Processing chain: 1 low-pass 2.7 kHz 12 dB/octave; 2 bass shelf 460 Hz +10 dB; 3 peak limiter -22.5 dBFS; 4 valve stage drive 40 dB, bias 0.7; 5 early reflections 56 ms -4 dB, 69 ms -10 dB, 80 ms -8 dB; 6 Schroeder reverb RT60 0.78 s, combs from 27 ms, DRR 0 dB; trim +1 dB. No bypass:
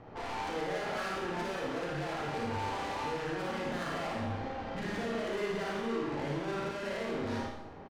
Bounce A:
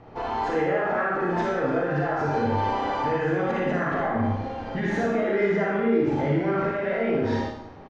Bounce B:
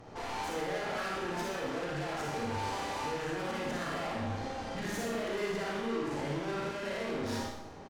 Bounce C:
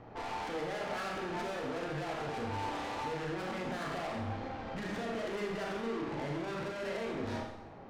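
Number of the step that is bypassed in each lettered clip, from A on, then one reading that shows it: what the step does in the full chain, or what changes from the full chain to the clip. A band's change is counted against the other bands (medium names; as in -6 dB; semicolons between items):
4, crest factor change +2.0 dB; 1, 8 kHz band +5.5 dB; 5, loudness change -2.0 LU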